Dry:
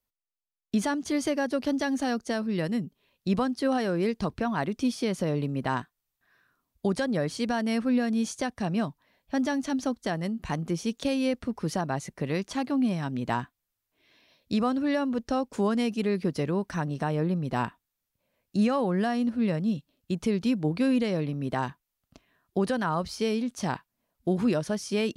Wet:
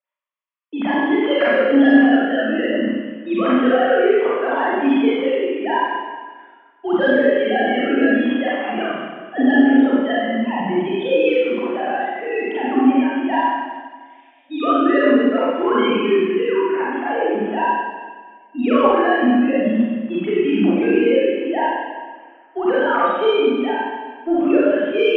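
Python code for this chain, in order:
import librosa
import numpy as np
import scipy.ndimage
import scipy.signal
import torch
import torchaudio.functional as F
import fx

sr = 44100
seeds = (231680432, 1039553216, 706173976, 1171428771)

y = fx.sine_speech(x, sr)
y = fx.highpass(y, sr, hz=410.0, slope=6)
y = fx.fold_sine(y, sr, drive_db=4, ceiling_db=-12.0)
y = fx.air_absorb(y, sr, metres=76.0)
y = fx.rev_schroeder(y, sr, rt60_s=1.5, comb_ms=32, drr_db=-9.0)
y = y * 10.0 ** (-1.5 / 20.0)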